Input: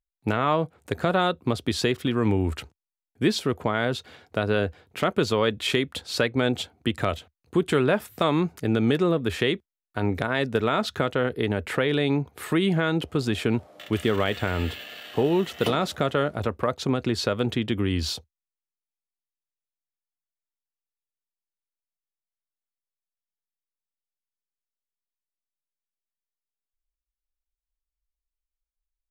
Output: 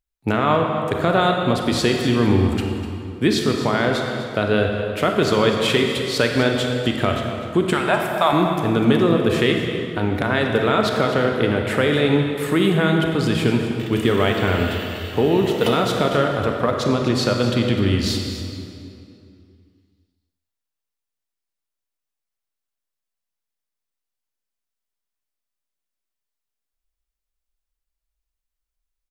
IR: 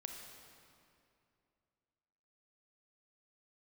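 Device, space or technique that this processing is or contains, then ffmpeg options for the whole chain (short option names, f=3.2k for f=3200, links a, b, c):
cave: -filter_complex "[0:a]asettb=1/sr,asplit=3[a][b][c];[a]atrim=end=7.734[d];[b]atrim=start=7.73:end=8.33,asetpts=PTS-STARTPTS,afade=t=in:d=0.004:c=qsin,afade=t=out:st=0.596:d=0.004:c=qsin,lowshelf=f=550:t=q:w=3:g=-10.5[e];[c]atrim=start=8.326[f];[d][e]acrossfade=d=0.004:c1=hsin:c2=qsin[g];[g][f]acrossfade=d=0.004:c1=qsin:c2=hsin,aecho=1:1:249:0.237[h];[1:a]atrim=start_sample=2205[i];[h][i]afir=irnorm=-1:irlink=0,volume=8.5dB"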